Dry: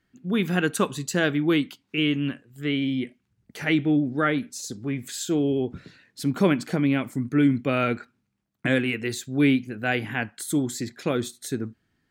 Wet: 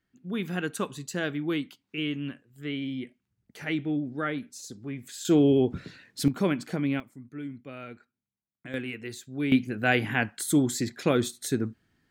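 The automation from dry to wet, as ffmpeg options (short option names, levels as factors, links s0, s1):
-af "asetnsamples=n=441:p=0,asendcmd='5.25 volume volume 3dB;6.28 volume volume -5.5dB;7 volume volume -18dB;8.74 volume volume -9.5dB;9.52 volume volume 1.5dB',volume=0.422"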